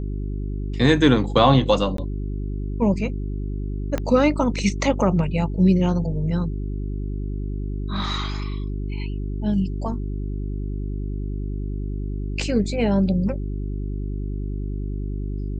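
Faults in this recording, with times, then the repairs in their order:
hum 50 Hz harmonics 8 -27 dBFS
1.97–1.98 gap 13 ms
3.98 pop -11 dBFS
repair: de-click; de-hum 50 Hz, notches 8; interpolate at 1.97, 13 ms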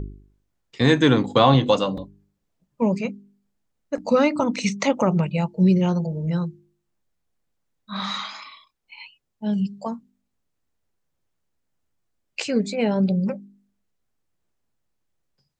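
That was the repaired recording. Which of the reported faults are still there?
3.98 pop

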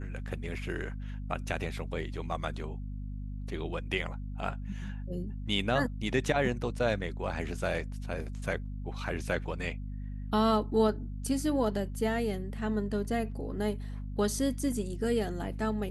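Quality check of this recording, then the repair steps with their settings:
hum 50 Hz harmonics 5 -38 dBFS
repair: de-hum 50 Hz, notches 5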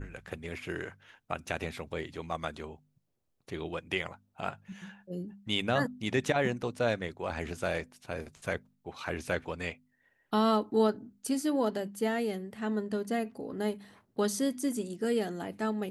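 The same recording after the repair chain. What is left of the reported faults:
none

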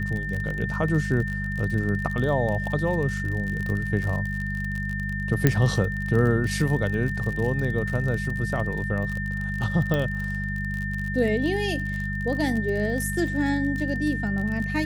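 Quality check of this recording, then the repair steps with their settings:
crackle 43/s -29 dBFS
hum 50 Hz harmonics 4 -30 dBFS
tone 1800 Hz -31 dBFS
5.47 pop -5 dBFS
9.94 pop -13 dBFS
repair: de-click; notch 1800 Hz, Q 30; de-hum 50 Hz, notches 4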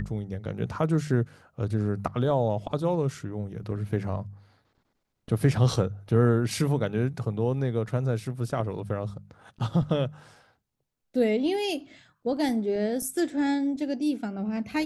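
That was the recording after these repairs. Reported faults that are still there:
none

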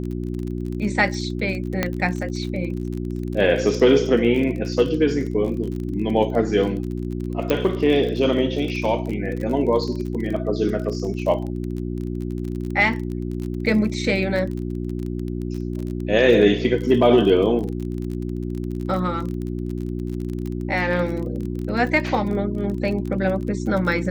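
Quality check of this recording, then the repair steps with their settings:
crackle 29/s -28 dBFS
hum 60 Hz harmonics 6 -27 dBFS
1.83 pop -6 dBFS
7.5 pop -8 dBFS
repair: de-click; de-hum 60 Hz, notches 6

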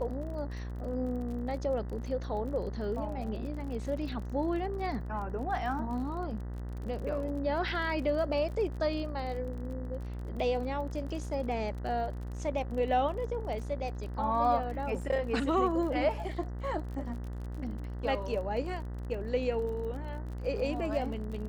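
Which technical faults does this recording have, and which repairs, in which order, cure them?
buzz 60 Hz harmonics 33 -38 dBFS
crackle 33/s -40 dBFS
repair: de-click; de-hum 60 Hz, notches 33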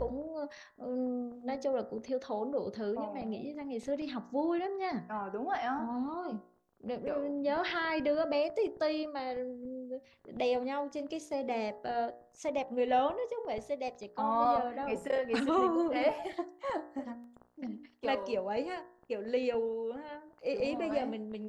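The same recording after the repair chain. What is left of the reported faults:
none

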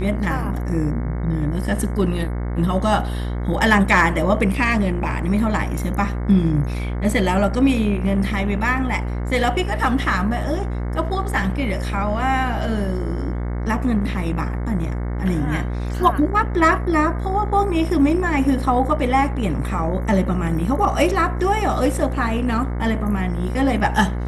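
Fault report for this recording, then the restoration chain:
buzz 60 Hz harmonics 37 -24 dBFS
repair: de-hum 60 Hz, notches 37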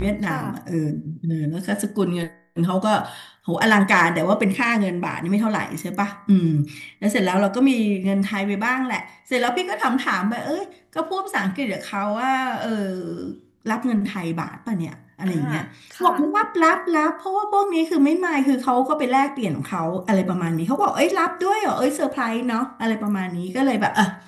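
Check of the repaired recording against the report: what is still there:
none

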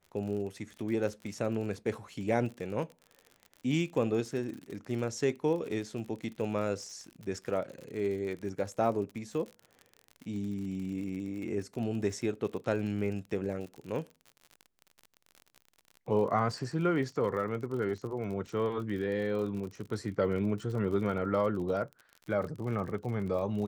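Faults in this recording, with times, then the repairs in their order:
crackle 50/s -39 dBFS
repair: de-click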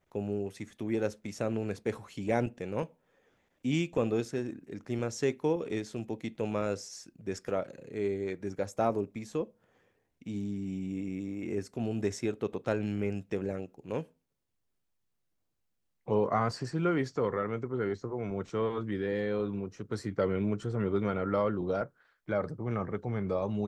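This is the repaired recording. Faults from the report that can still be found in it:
none

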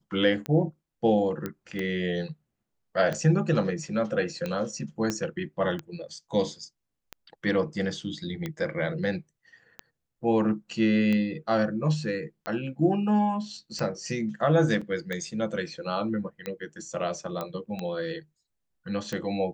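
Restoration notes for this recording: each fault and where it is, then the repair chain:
tick 45 rpm -18 dBFS
1.46 pop -18 dBFS
5.1 pop -14 dBFS
14.81–14.82 gap 5.2 ms
17.41 pop -18 dBFS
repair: de-click; interpolate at 14.81, 5.2 ms

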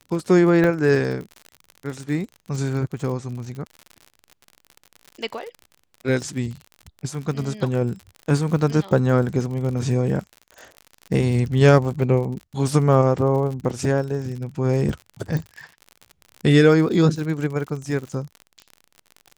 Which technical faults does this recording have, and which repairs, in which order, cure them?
crackle 59/s -30 dBFS
0.64 gap 2.7 ms
15.37 pop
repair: de-click; interpolate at 0.64, 2.7 ms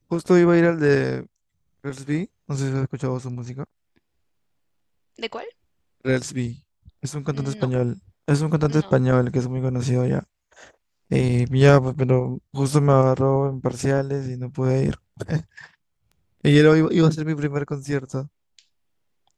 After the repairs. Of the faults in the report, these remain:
none

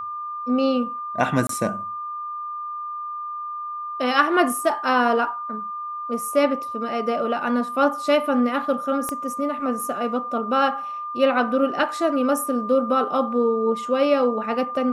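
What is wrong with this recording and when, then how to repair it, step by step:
tone 1200 Hz -28 dBFS
1.47–1.49 gap 23 ms
9.09 pop -13 dBFS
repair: de-click; notch 1200 Hz, Q 30; interpolate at 1.47, 23 ms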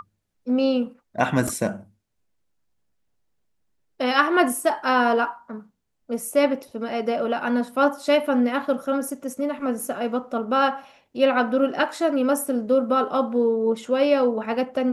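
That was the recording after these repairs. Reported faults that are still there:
9.09 pop

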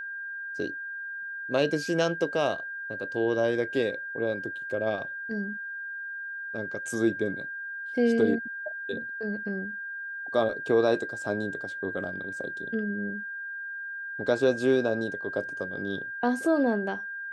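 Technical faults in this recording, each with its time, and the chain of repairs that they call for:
tone 1600 Hz -34 dBFS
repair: notch 1600 Hz, Q 30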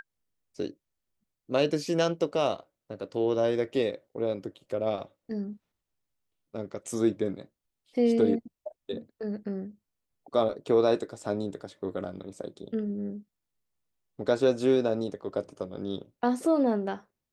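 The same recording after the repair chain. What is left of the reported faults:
none

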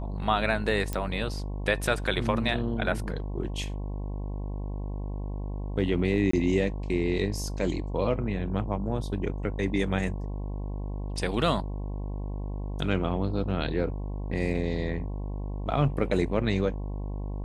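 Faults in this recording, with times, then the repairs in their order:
buzz 50 Hz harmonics 22 -33 dBFS
0.93 pop -16 dBFS
6.31–6.33 gap 24 ms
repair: de-click; de-hum 50 Hz, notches 22; interpolate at 6.31, 24 ms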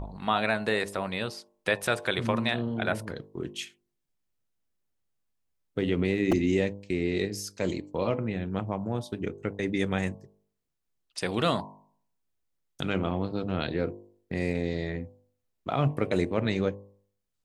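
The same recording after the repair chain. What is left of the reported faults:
none

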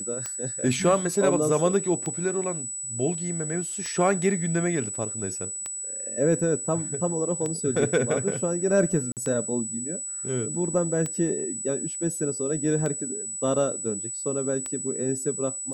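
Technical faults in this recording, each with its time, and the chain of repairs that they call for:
tick 33 1/3 rpm -17 dBFS
tone 7900 Hz -31 dBFS
9.12–9.17 gap 48 ms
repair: de-click; notch 7900 Hz, Q 30; interpolate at 9.12, 48 ms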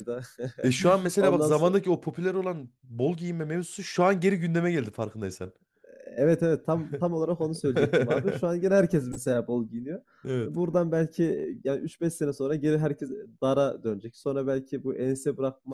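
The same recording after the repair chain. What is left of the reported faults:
none

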